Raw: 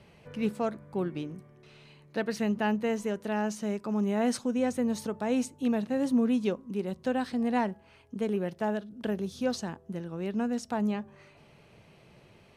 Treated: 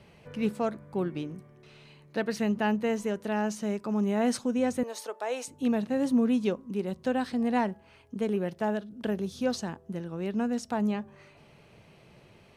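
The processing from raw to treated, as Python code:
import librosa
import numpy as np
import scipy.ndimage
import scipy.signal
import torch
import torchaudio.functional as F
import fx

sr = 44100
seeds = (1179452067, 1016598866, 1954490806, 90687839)

y = fx.highpass(x, sr, hz=450.0, slope=24, at=(4.83, 5.48))
y = F.gain(torch.from_numpy(y), 1.0).numpy()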